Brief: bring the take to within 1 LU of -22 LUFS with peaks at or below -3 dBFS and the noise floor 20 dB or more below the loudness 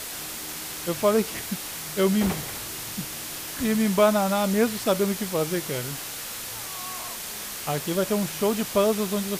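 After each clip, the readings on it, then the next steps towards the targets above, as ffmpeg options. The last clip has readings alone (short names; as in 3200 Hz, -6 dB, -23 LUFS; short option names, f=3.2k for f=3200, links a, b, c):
noise floor -35 dBFS; noise floor target -46 dBFS; loudness -26.0 LUFS; peak -7.5 dBFS; loudness target -22.0 LUFS
-> -af "afftdn=nr=11:nf=-35"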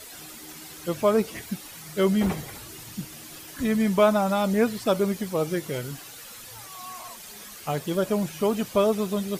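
noise floor -43 dBFS; noise floor target -46 dBFS
-> -af "afftdn=nr=6:nf=-43"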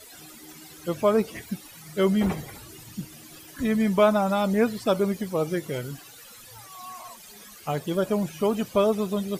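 noise floor -47 dBFS; loudness -25.0 LUFS; peak -8.0 dBFS; loudness target -22.0 LUFS
-> -af "volume=3dB"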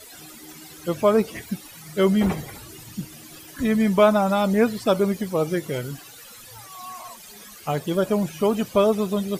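loudness -22.0 LUFS; peak -5.0 dBFS; noise floor -44 dBFS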